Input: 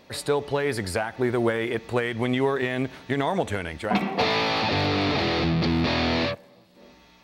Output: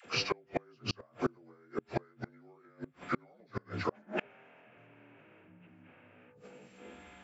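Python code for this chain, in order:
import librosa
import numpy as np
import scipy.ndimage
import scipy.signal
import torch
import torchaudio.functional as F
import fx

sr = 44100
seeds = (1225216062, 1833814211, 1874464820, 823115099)

y = fx.partial_stretch(x, sr, pct=82)
y = fx.high_shelf(y, sr, hz=3900.0, db=4.0)
y = fx.dispersion(y, sr, late='lows', ms=51.0, hz=570.0)
y = fx.gate_flip(y, sr, shuts_db=-19.0, range_db=-35)
y = y * 10.0 ** (1.0 / 20.0)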